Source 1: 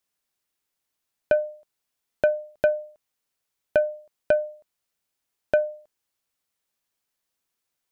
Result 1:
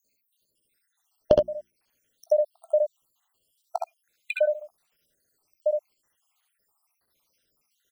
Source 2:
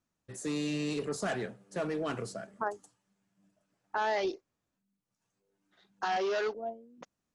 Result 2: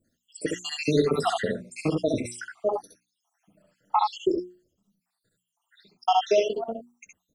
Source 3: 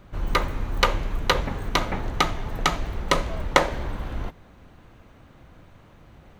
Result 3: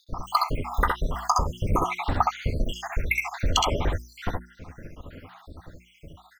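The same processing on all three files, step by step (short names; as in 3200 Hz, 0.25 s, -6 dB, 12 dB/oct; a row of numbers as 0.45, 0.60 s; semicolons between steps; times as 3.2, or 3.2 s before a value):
random spectral dropouts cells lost 83%; notches 60/120/180/240/300/360 Hz; compressor 6:1, threshold -30 dBFS; early reflections 18 ms -17.5 dB, 66 ms -4 dB, 78 ms -7 dB; match loudness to -27 LUFS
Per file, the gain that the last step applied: +13.5, +14.0, +10.5 dB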